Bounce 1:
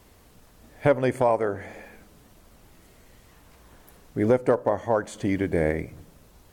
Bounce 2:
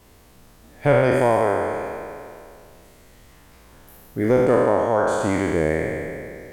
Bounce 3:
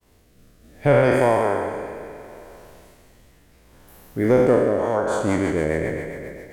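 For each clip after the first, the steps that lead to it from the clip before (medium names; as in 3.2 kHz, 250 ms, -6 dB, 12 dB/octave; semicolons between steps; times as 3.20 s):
spectral sustain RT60 2.44 s
expander -47 dBFS; rotary cabinet horn 0.65 Hz, later 7.5 Hz, at 4.51 s; thinning echo 89 ms, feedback 77%, high-pass 190 Hz, level -14.5 dB; trim +1 dB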